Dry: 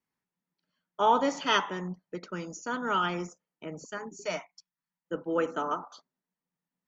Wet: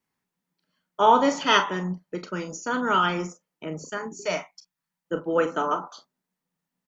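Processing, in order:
ambience of single reflections 32 ms −11.5 dB, 44 ms −14 dB
level +5.5 dB

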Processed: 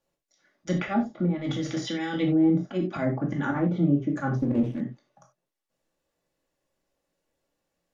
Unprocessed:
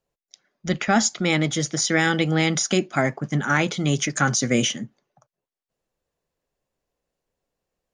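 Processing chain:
0:01.26–0:02.17: compressor whose output falls as the input rises −31 dBFS, ratio −1
volume swells 104 ms
treble cut that deepens with the level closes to 440 Hz, closed at −19.5 dBFS
dynamic equaliser 1,600 Hz, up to −5 dB, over −46 dBFS, Q 1
brickwall limiter −18 dBFS, peak gain reduction 5 dB
low-shelf EQ 89 Hz −9 dB
convolution reverb, pre-delay 3 ms, DRR −0.5 dB
0:04.39–0:04.81: windowed peak hold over 9 samples

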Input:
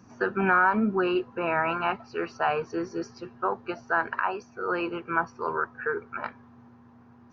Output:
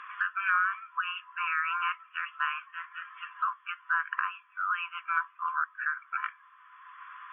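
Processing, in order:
brick-wall band-pass 1,000–3,500 Hz
multiband upward and downward compressor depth 70%

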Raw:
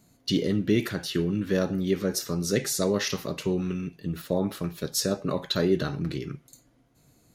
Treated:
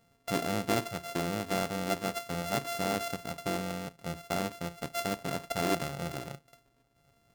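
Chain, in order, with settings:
samples sorted by size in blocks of 64 samples
level −6.5 dB

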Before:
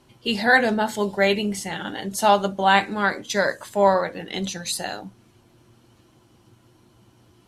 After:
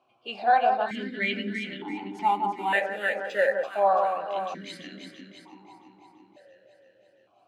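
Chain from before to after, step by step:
dynamic equaliser 1,700 Hz, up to +4 dB, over −28 dBFS, Q 0.81
0:02.19–0:03.70: bad sample-rate conversion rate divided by 4×, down none, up hold
on a send: delay that swaps between a low-pass and a high-pass 168 ms, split 1,400 Hz, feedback 78%, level −4.5 dB
on the sum: formant filter that steps through the vowels 1.1 Hz
level +3 dB

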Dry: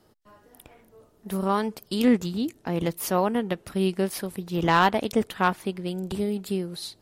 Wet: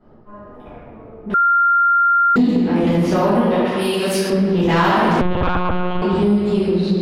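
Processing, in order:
low-pass that shuts in the quiet parts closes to 1,300 Hz, open at −20 dBFS
convolution reverb RT60 2.2 s, pre-delay 4 ms, DRR −16 dB
0:05.21–0:06.02: one-pitch LPC vocoder at 8 kHz 180 Hz
downward compressor 3 to 1, threshold −13 dBFS, peak gain reduction 11.5 dB
0:03.65–0:04.30: spectral tilt +2.5 dB per octave
soft clipping −7 dBFS, distortion −19 dB
0:01.34–0:02.36: beep over 1,390 Hz −11 dBFS

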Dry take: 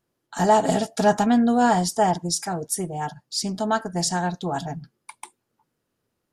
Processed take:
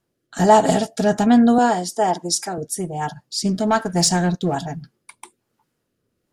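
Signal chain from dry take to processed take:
0:01.58–0:02.58: Chebyshev high-pass filter 310 Hz, order 2
0:03.45–0:04.55: leveller curve on the samples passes 1
rotating-speaker cabinet horn 1.2 Hz
level +5.5 dB

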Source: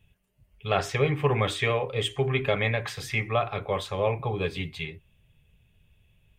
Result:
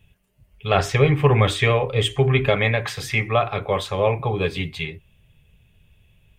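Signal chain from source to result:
0:00.74–0:02.50: low-shelf EQ 88 Hz +11 dB
level +6 dB

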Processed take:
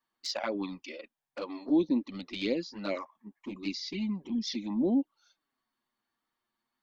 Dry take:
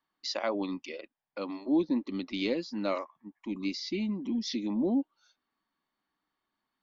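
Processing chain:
high-shelf EQ 4,700 Hz +3 dB
flanger swept by the level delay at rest 8.6 ms, full sweep at −24.5 dBFS
level +1.5 dB

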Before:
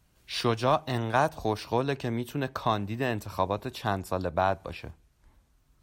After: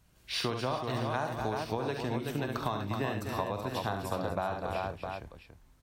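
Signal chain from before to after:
on a send: multi-tap delay 47/70/246/377/659 ms −10/−7.5/−11/−6.5/−14 dB
on the sum: downward compressor, threshold −29 dBFS, peak gain reduction 11.5 dB

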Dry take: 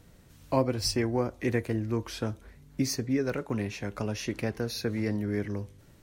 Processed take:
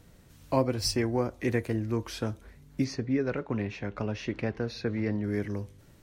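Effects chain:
0:02.84–0:05.24: low-pass filter 3,500 Hz 12 dB per octave

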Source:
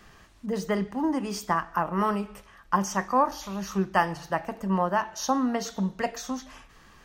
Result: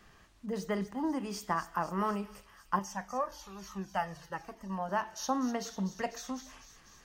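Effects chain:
delay with a high-pass on its return 248 ms, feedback 71%, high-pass 3,800 Hz, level −10 dB
0:02.79–0:04.89: flanger whose copies keep moving one way falling 1.1 Hz
level −6.5 dB

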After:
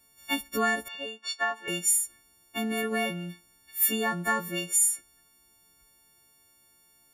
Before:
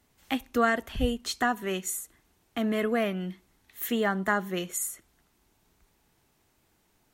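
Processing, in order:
every partial snapped to a pitch grid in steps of 4 semitones
floating-point word with a short mantissa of 8 bits
0:00.88–0:01.68: band-pass filter 610–3,400 Hz
level −3 dB

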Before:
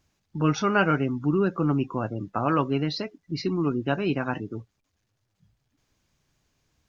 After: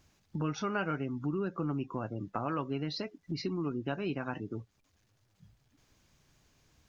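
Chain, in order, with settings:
downward compressor 2.5 to 1, threshold −42 dBFS, peak gain reduction 16.5 dB
level +4 dB

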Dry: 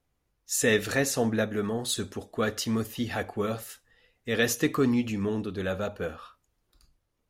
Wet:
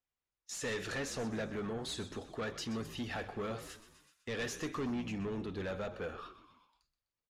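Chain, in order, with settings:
noise gate −50 dBFS, range −19 dB
low-shelf EQ 470 Hz −4.5 dB
in parallel at +1 dB: downward compressor, threshold −35 dBFS, peak gain reduction 14 dB
on the sum: soft clipping −26 dBFS, distortion −9 dB
high-frequency loss of the air 64 metres
on a send: echo with shifted repeats 126 ms, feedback 47%, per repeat −64 Hz, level −14 dB
on the sum: one half of a high-frequency compander encoder only
level −7 dB

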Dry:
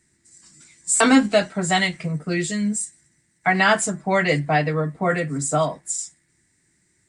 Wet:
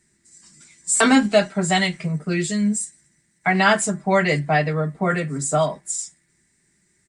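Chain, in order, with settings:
comb filter 5 ms, depth 38%

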